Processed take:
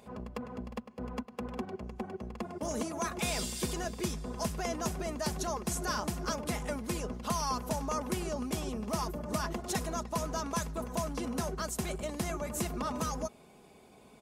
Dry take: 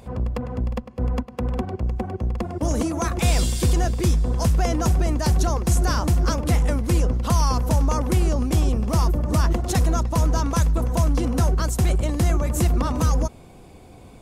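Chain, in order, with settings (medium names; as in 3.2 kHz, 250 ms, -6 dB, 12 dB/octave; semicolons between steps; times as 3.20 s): high-pass 290 Hz 6 dB/octave; comb 4.8 ms, depth 45%; trim -8 dB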